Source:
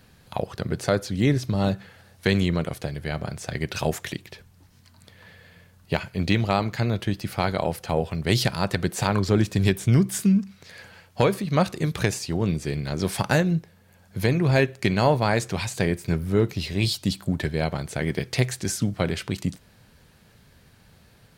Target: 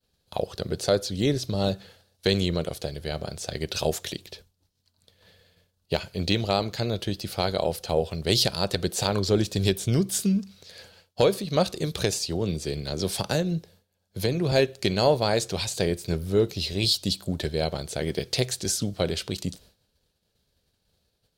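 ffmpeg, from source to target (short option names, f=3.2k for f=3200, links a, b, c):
-filter_complex "[0:a]agate=range=-33dB:threshold=-43dB:ratio=3:detection=peak,equalizer=f=125:t=o:w=1:g=-7,equalizer=f=250:t=o:w=1:g=-5,equalizer=f=500:t=o:w=1:g=3,equalizer=f=1k:t=o:w=1:g=-6,equalizer=f=2k:t=o:w=1:g=-9,equalizer=f=4k:t=o:w=1:g=6,asettb=1/sr,asplit=3[a][b][c];[a]atrim=end=12.254[d];[b]atrim=start=12.25:end=14.52,asetpts=PTS-STARTPTS,afade=t=in:d=0.004:c=qsin,afade=t=out:st=2.266:d=0.004:c=qsin,acrossover=split=280[e][f];[f]acompressor=threshold=-28dB:ratio=2[g];[e][g]amix=inputs=2:normalize=0[h];[c]atrim=start=14.516[i];[d][h]acrossfade=d=0.004:c1=hsin:c2=qsin[j];[j][i]acrossfade=d=0.004:c1=qsin:c2=hsin,volume=1.5dB"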